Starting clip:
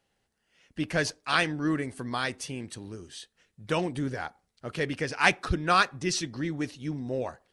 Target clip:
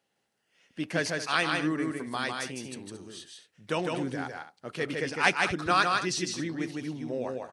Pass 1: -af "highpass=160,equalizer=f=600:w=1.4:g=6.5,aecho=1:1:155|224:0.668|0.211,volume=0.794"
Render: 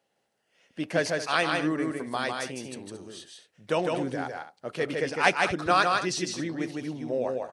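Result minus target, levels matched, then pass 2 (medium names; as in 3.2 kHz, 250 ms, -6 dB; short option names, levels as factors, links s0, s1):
500 Hz band +3.0 dB
-af "highpass=160,aecho=1:1:155|224:0.668|0.211,volume=0.794"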